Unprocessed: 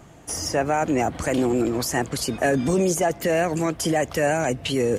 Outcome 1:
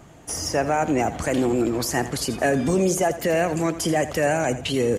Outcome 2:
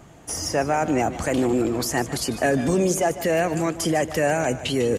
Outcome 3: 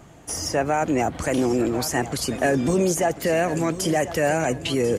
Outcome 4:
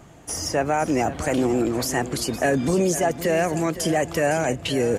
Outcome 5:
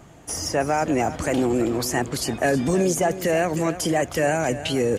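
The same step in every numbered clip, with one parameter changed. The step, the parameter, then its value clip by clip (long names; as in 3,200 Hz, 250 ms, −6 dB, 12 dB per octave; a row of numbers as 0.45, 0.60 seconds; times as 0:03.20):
repeating echo, delay time: 84, 150, 1,043, 512, 319 milliseconds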